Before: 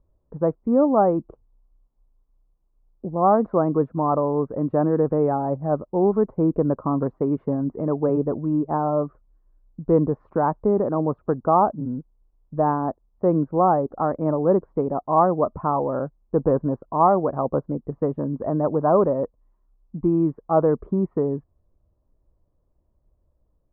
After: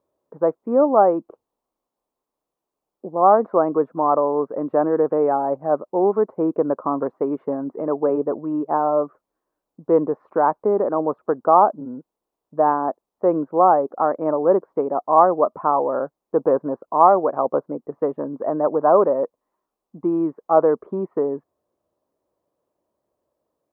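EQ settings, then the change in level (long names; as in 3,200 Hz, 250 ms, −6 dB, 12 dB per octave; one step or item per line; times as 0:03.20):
high-pass filter 390 Hz 12 dB per octave
+4.5 dB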